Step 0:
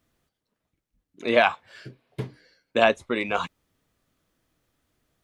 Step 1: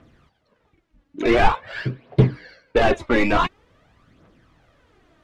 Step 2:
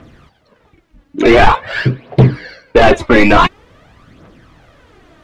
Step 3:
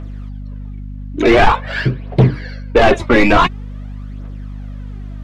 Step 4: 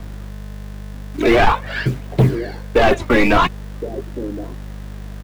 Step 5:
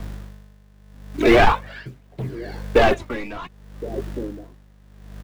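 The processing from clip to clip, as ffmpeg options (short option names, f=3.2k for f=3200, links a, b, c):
-filter_complex "[0:a]asplit=2[a][b];[b]highpass=f=720:p=1,volume=34dB,asoftclip=type=tanh:threshold=-1.5dB[c];[a][c]amix=inputs=2:normalize=0,lowpass=f=4k:p=1,volume=-6dB,aemphasis=mode=reproduction:type=riaa,aphaser=in_gain=1:out_gain=1:delay=3.7:decay=0.54:speed=0.47:type=triangular,volume=-9.5dB"
-filter_complex "[0:a]asplit=2[a][b];[b]alimiter=limit=-10.5dB:level=0:latency=1,volume=-1dB[c];[a][c]amix=inputs=2:normalize=0,aeval=exprs='1.12*sin(PI/2*1.78*val(0)/1.12)':c=same,volume=-2dB"
-af "aeval=exprs='val(0)+0.0631*(sin(2*PI*50*n/s)+sin(2*PI*2*50*n/s)/2+sin(2*PI*3*50*n/s)/3+sin(2*PI*4*50*n/s)/4+sin(2*PI*5*50*n/s)/5)':c=same,volume=-2.5dB"
-filter_complex "[0:a]acrossover=split=270|440|1700[a][b][c][d];[a]acrusher=bits=5:mix=0:aa=0.000001[e];[b]aecho=1:1:1067:0.631[f];[e][f][c][d]amix=inputs=4:normalize=0,volume=-3dB"
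-af "aeval=exprs='val(0)*pow(10,-20*(0.5-0.5*cos(2*PI*0.74*n/s))/20)':c=same"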